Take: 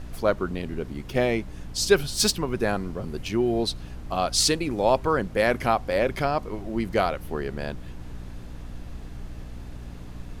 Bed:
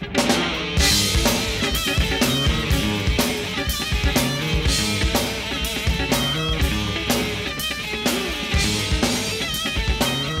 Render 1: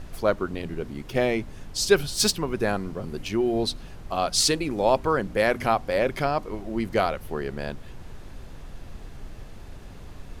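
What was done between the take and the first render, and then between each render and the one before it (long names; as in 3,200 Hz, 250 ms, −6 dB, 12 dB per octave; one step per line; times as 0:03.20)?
hum removal 60 Hz, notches 5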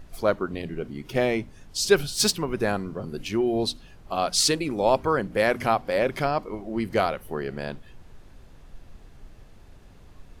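noise reduction from a noise print 8 dB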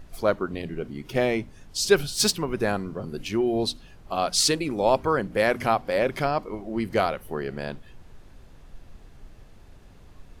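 no processing that can be heard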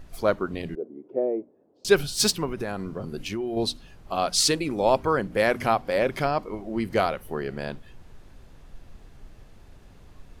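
0:00.75–0:01.85: flat-topped band-pass 430 Hz, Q 1.3
0:02.48–0:03.57: downward compressor 5 to 1, threshold −26 dBFS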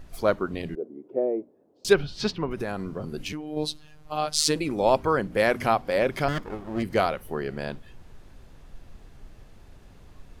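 0:01.93–0:02.51: high-frequency loss of the air 250 metres
0:03.32–0:04.56: phases set to zero 152 Hz
0:06.28–0:06.83: lower of the sound and its delayed copy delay 0.58 ms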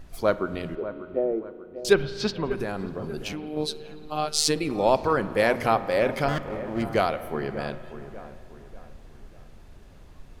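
delay with a low-pass on its return 591 ms, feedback 40%, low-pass 1,600 Hz, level −12.5 dB
spring reverb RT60 2.8 s, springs 35 ms, chirp 25 ms, DRR 14 dB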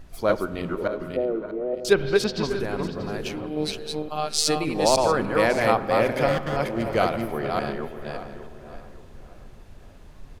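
delay that plays each chunk backwards 292 ms, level −2.5 dB
single-tap delay 636 ms −15.5 dB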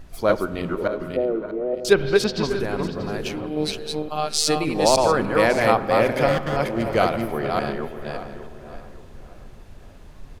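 level +2.5 dB
brickwall limiter −2 dBFS, peak gain reduction 2 dB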